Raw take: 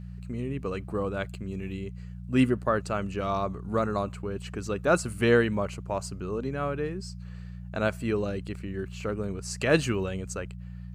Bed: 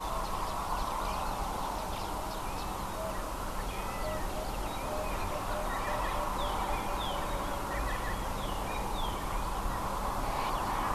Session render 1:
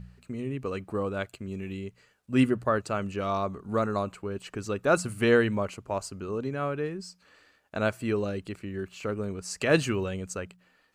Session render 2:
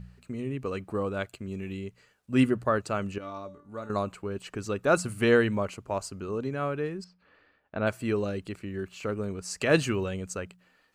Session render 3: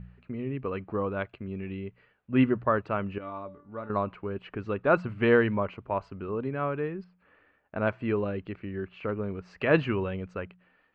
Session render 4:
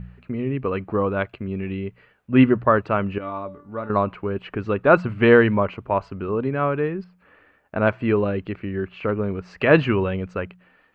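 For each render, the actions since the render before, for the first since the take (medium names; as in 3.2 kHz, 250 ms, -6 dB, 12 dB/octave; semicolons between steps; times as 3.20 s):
de-hum 60 Hz, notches 3
3.18–3.90 s: feedback comb 290 Hz, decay 0.37 s, mix 80%; 7.04–7.87 s: distance through air 340 m
low-pass 2.8 kHz 24 dB/octave; dynamic bell 990 Hz, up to +5 dB, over -50 dBFS, Q 5.2
trim +8 dB; peak limiter -2 dBFS, peak gain reduction 1.5 dB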